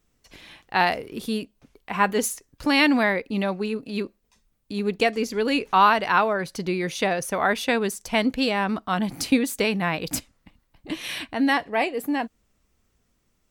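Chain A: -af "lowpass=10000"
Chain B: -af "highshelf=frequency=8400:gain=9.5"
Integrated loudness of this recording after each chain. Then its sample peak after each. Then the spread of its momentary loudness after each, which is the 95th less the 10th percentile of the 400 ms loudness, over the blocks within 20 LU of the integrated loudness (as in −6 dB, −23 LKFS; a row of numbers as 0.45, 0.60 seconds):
−24.0, −23.5 LKFS; −5.5, −5.5 dBFS; 12, 11 LU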